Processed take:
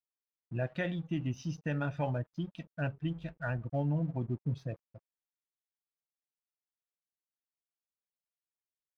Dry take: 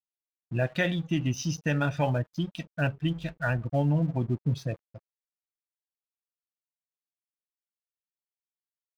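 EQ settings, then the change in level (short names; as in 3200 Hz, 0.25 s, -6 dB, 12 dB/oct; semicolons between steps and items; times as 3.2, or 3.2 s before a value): LPF 1900 Hz 6 dB/oct; -6.5 dB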